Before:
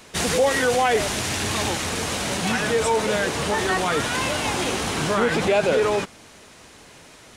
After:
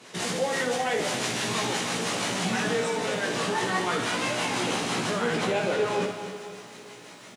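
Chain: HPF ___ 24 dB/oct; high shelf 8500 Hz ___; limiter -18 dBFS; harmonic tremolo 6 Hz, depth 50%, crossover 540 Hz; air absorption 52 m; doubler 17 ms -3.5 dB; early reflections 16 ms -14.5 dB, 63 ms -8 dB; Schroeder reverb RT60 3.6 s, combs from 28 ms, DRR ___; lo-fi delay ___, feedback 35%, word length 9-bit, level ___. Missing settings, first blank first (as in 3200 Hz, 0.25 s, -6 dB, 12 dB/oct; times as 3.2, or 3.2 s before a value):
130 Hz, +6.5 dB, 11.5 dB, 0.259 s, -11 dB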